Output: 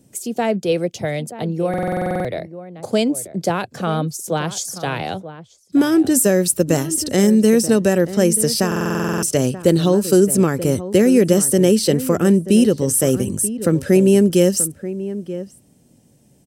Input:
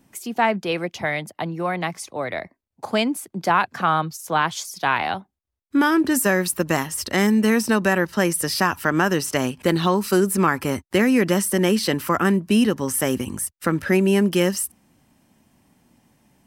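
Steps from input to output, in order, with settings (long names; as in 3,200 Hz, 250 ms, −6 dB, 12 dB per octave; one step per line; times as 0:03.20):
graphic EQ with 10 bands 125 Hz +8 dB, 500 Hz +9 dB, 1,000 Hz −11 dB, 2,000 Hz −6 dB, 8,000 Hz +8 dB
slap from a distant wall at 160 metres, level −13 dB
buffer that repeats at 0:01.69/0:08.67, samples 2,048, times 11
level +1 dB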